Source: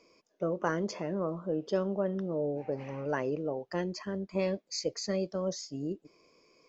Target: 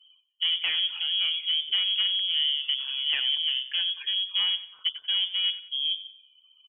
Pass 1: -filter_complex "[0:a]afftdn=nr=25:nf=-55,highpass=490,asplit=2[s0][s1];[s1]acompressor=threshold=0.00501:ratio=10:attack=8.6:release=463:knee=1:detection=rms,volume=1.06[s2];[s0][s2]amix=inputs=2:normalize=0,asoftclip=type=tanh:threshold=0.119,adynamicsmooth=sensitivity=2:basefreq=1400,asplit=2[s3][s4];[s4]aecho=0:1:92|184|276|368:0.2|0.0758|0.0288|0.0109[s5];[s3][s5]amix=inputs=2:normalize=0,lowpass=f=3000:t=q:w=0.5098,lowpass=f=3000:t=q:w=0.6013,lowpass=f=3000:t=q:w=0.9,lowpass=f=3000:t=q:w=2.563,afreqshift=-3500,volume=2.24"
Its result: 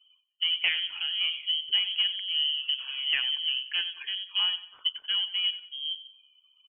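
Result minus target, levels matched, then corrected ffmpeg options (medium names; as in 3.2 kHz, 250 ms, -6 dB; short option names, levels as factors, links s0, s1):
saturation: distortion -12 dB; 500 Hz band +2.5 dB
-filter_complex "[0:a]afftdn=nr=25:nf=-55,asplit=2[s0][s1];[s1]acompressor=threshold=0.00501:ratio=10:attack=8.6:release=463:knee=1:detection=rms,volume=1.06[s2];[s0][s2]amix=inputs=2:normalize=0,asoftclip=type=tanh:threshold=0.0501,adynamicsmooth=sensitivity=2:basefreq=1400,asplit=2[s3][s4];[s4]aecho=0:1:92|184|276|368:0.2|0.0758|0.0288|0.0109[s5];[s3][s5]amix=inputs=2:normalize=0,lowpass=f=3000:t=q:w=0.5098,lowpass=f=3000:t=q:w=0.6013,lowpass=f=3000:t=q:w=0.9,lowpass=f=3000:t=q:w=2.563,afreqshift=-3500,volume=2.24"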